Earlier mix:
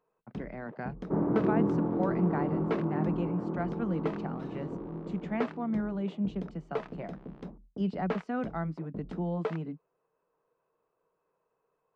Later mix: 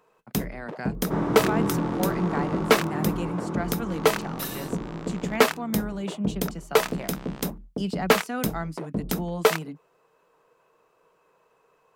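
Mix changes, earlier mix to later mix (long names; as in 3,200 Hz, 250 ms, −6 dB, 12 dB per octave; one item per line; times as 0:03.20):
first sound +11.5 dB
second sound: remove resonant band-pass 360 Hz, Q 0.53
master: remove head-to-tape spacing loss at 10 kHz 39 dB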